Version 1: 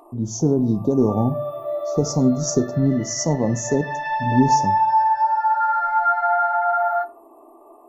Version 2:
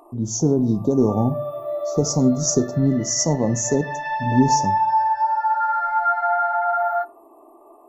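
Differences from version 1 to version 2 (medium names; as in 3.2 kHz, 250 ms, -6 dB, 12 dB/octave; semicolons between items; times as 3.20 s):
speech: remove distance through air 69 m; background: send -6.0 dB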